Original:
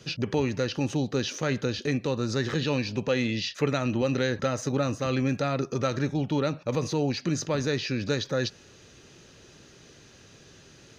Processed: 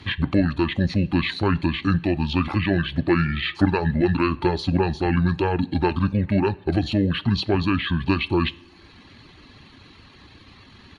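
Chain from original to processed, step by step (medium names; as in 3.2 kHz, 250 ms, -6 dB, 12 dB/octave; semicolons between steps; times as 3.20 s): reverb removal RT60 0.76 s; pitch shift -7 st; two-slope reverb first 0.48 s, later 3.1 s, from -17 dB, DRR 17 dB; trim +7 dB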